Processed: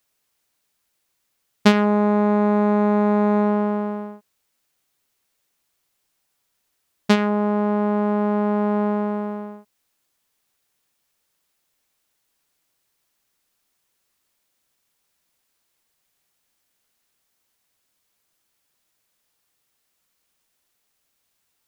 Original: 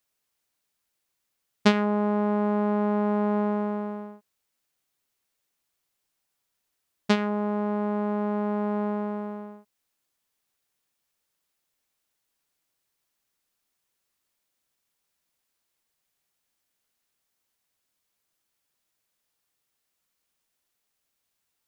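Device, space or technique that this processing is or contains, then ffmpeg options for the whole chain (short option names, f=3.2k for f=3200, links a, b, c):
parallel distortion: -filter_complex "[0:a]asplit=2[a][b];[b]asoftclip=type=hard:threshold=-18.5dB,volume=-6dB[c];[a][c]amix=inputs=2:normalize=0,volume=3dB"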